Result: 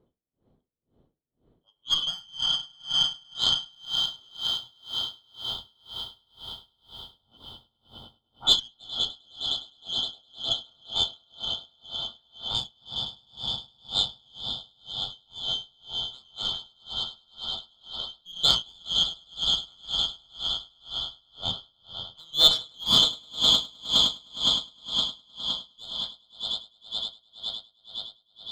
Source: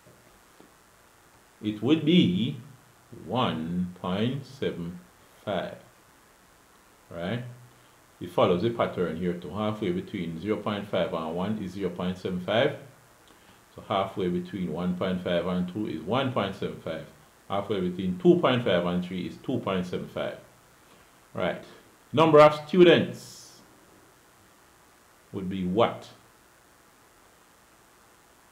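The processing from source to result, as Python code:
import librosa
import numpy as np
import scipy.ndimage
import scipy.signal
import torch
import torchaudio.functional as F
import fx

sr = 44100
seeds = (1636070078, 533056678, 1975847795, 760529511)

p1 = fx.band_shuffle(x, sr, order='2413')
p2 = fx.env_lowpass(p1, sr, base_hz=440.0, full_db=-17.5)
p3 = fx.dmg_noise_colour(p2, sr, seeds[0], colour='white', level_db=-56.0, at=(3.71, 4.95), fade=0.02)
p4 = fx.dispersion(p3, sr, late='highs', ms=105.0, hz=1700.0, at=(7.37, 8.6))
p5 = p4 + fx.echo_swell(p4, sr, ms=103, loudest=8, wet_db=-11.0, dry=0)
p6 = fx.cheby_harmonics(p5, sr, harmonics=(8,), levels_db=(-27,), full_scale_db=-2.0)
p7 = p6 * 10.0 ** (-34 * (0.5 - 0.5 * np.cos(2.0 * np.pi * 2.0 * np.arange(len(p6)) / sr)) / 20.0)
y = p7 * librosa.db_to_amplitude(2.5)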